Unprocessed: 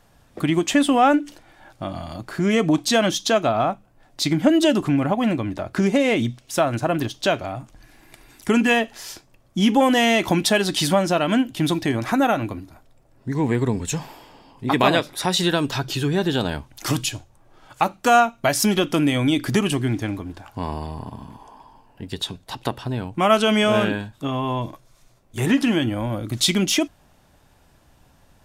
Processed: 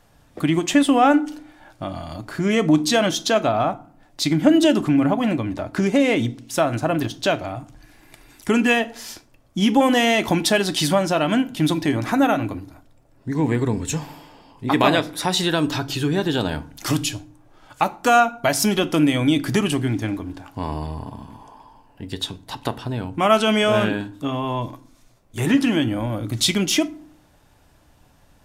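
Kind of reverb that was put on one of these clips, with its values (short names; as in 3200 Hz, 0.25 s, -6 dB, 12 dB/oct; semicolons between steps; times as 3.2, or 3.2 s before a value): FDN reverb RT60 0.51 s, low-frequency decay 1.5×, high-frequency decay 0.6×, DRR 13 dB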